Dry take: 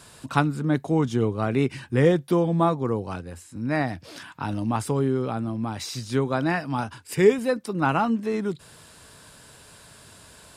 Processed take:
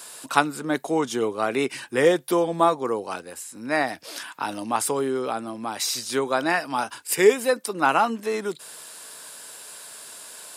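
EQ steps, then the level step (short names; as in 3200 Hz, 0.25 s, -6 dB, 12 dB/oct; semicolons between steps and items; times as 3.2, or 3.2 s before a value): HPF 410 Hz 12 dB/oct; high shelf 7300 Hz +12 dB; +4.0 dB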